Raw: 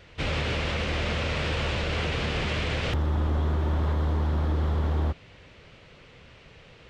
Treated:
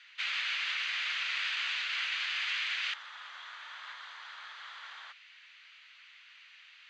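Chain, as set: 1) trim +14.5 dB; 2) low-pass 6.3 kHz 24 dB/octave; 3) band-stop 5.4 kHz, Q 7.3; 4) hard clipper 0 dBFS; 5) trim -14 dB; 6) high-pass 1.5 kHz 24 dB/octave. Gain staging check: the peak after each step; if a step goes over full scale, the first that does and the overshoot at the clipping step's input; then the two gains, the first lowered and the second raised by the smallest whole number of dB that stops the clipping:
-2.0 dBFS, -2.0 dBFS, -2.0 dBFS, -2.0 dBFS, -16.0 dBFS, -22.0 dBFS; nothing clips

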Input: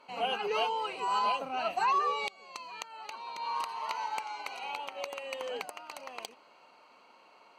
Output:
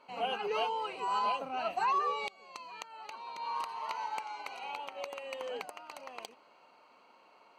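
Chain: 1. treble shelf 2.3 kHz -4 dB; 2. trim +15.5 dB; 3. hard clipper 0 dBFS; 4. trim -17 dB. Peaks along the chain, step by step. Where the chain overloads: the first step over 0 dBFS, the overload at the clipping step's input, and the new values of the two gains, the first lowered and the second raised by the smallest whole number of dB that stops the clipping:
-19.5 dBFS, -4.0 dBFS, -4.0 dBFS, -21.0 dBFS; nothing clips

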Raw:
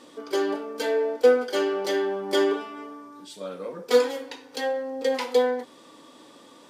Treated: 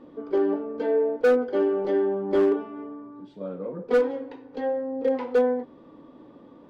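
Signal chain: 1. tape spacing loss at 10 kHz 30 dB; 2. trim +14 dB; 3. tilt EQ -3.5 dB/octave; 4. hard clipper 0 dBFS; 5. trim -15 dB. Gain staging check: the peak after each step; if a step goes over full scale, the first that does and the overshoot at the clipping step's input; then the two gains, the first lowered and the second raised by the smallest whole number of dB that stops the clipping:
-9.5 dBFS, +4.5 dBFS, +8.5 dBFS, 0.0 dBFS, -15.0 dBFS; step 2, 8.5 dB; step 2 +5 dB, step 5 -6 dB

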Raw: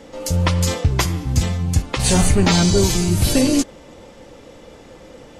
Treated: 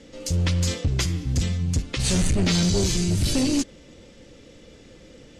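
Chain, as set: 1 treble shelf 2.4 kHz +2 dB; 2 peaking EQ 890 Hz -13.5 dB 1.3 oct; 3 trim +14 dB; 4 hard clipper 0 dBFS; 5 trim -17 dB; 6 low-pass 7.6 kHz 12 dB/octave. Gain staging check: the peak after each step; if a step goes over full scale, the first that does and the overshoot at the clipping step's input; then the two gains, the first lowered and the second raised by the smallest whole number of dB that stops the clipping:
-5.0 dBFS, -4.5 dBFS, +9.5 dBFS, 0.0 dBFS, -17.0 dBFS, -16.0 dBFS; step 3, 9.5 dB; step 3 +4 dB, step 5 -7 dB

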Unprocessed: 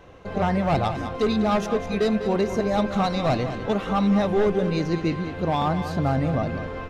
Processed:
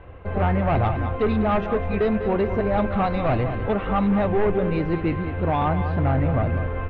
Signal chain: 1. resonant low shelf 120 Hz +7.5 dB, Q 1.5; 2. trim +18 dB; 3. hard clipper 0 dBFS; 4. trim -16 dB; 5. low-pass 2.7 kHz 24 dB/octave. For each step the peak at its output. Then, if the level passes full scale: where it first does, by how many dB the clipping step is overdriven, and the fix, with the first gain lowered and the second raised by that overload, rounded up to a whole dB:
-10.0 dBFS, +8.0 dBFS, 0.0 dBFS, -16.0 dBFS, -14.5 dBFS; step 2, 8.0 dB; step 2 +10 dB, step 4 -8 dB

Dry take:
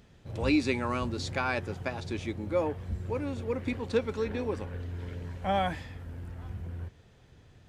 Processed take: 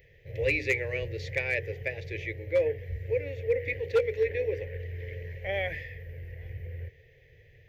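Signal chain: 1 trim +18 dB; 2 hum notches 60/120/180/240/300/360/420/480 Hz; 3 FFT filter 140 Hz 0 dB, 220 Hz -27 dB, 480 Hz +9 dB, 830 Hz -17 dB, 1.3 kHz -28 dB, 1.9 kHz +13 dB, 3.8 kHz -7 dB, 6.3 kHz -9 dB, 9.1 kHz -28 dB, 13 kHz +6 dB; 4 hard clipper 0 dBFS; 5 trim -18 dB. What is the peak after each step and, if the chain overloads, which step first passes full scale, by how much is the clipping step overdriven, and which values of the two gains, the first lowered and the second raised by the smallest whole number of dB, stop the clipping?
+3.5 dBFS, +3.5 dBFS, +8.0 dBFS, 0.0 dBFS, -18.0 dBFS; step 1, 8.0 dB; step 1 +10 dB, step 5 -10 dB

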